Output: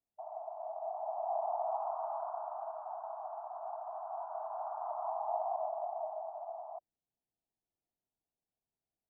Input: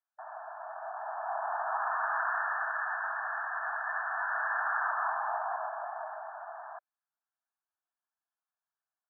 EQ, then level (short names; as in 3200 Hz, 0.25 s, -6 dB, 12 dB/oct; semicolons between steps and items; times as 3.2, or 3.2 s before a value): Gaussian blur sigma 16 samples; +13.5 dB